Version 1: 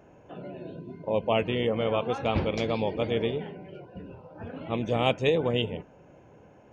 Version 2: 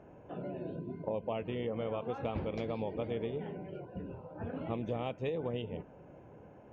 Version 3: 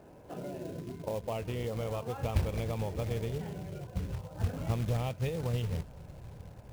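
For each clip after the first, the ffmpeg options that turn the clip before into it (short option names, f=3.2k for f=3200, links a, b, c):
-af "acompressor=threshold=-32dB:ratio=6,lowpass=f=1.5k:p=1"
-af "asubboost=boost=10.5:cutoff=93,acrusher=bits=4:mode=log:mix=0:aa=0.000001,volume=1dB"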